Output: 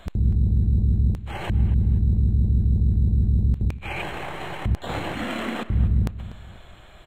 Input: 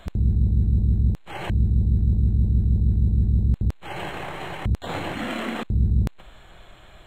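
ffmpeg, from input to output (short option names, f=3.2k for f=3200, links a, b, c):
-filter_complex "[0:a]asettb=1/sr,asplit=3[a][b][c];[a]atrim=end=3.614[d];[b]atrim=start=3.61:end=4.02,asetpts=PTS-STARTPTS,afade=t=in:d=0.004:c=qsin,afade=t=out:st=0.406:d=0.004:c=qsin,equalizer=f=2.4k:t=o:w=0.22:g=14.5[e];[c]atrim=start=4.016[f];[d][e]acrossfade=d=0.004:c1=hsin:c2=qsin[g];[g][f]acrossfade=d=0.004:c1=qsin:c2=hsin,asplit=2[h][i];[i]adelay=243,lowpass=f=3.5k:p=1,volume=-14.5dB,asplit=2[j][k];[k]adelay=243,lowpass=f=3.5k:p=1,volume=0.37,asplit=2[l][m];[m]adelay=243,lowpass=f=3.5k:p=1,volume=0.37[n];[h][j][l][n]amix=inputs=4:normalize=0"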